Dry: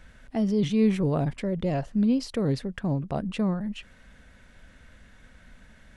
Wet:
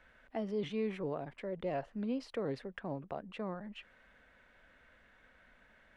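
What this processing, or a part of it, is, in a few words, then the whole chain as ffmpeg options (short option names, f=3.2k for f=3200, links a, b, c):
DJ mixer with the lows and highs turned down: -filter_complex "[0:a]acrossover=split=340 3200:gain=0.2 1 0.178[a][b][c];[a][b][c]amix=inputs=3:normalize=0,alimiter=limit=-21.5dB:level=0:latency=1:release=442,volume=-5dB"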